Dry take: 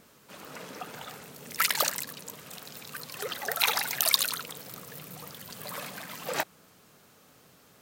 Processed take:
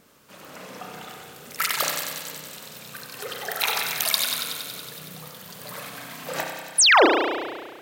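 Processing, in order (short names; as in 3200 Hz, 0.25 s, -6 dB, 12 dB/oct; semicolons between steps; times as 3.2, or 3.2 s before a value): thin delay 93 ms, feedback 76%, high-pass 2600 Hz, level -6 dB; painted sound fall, 6.78–7.06, 270–11000 Hz -15 dBFS; spring tank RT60 1.6 s, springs 32 ms, chirp 40 ms, DRR 1.5 dB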